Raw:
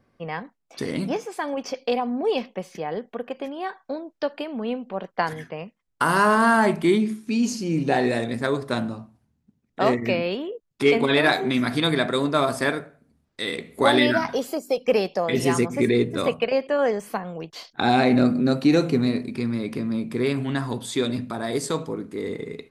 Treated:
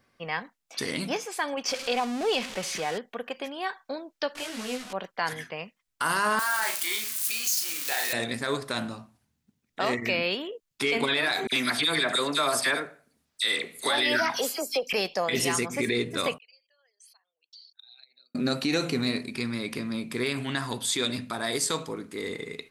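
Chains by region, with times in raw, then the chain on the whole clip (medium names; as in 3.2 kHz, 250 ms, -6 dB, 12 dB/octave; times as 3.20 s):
1.68–2.98 s: jump at every zero crossing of -33 dBFS + low-pass 8.8 kHz
4.35–4.93 s: one-bit delta coder 64 kbps, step -30 dBFS + treble shelf 10 kHz -4.5 dB + detune thickener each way 17 cents
6.39–8.13 s: zero-crossing glitches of -20.5 dBFS + high-pass 930 Hz + doubling 36 ms -6 dB
11.47–14.93 s: tone controls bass -6 dB, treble +2 dB + phase dispersion lows, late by 55 ms, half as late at 2.2 kHz
16.38–18.35 s: resonances exaggerated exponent 2 + ladder band-pass 4.6 kHz, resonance 70% + compression 10:1, threshold -53 dBFS
whole clip: tilt shelf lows -7 dB, about 1.1 kHz; peak limiter -15.5 dBFS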